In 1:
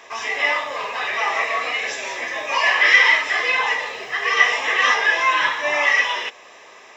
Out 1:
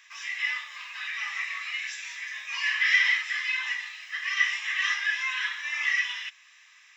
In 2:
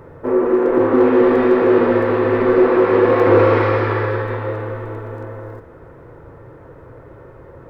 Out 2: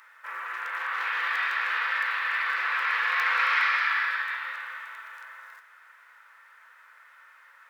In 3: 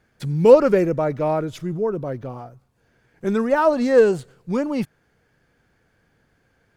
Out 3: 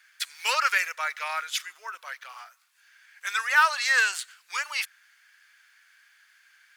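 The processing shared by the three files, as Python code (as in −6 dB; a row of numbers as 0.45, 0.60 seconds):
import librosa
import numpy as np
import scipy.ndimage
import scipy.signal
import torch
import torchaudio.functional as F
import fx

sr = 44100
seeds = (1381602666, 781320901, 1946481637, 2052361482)

y = scipy.signal.sosfilt(scipy.signal.cheby2(4, 80, 260.0, 'highpass', fs=sr, output='sos'), x)
y = y * 10.0 ** (-30 / 20.0) / np.sqrt(np.mean(np.square(y)))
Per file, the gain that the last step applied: −8.0, +4.0, +11.5 decibels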